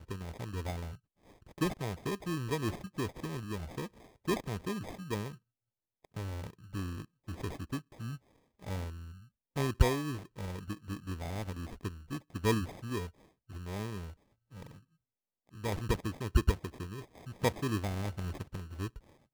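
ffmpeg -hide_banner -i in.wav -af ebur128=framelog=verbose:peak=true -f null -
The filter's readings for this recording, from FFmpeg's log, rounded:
Integrated loudness:
  I:         -37.3 LUFS
  Threshold: -47.9 LUFS
Loudness range:
  LRA:         6.7 LU
  Threshold: -58.0 LUFS
  LRA low:   -42.2 LUFS
  LRA high:  -35.5 LUFS
True peak:
  Peak:      -12.1 dBFS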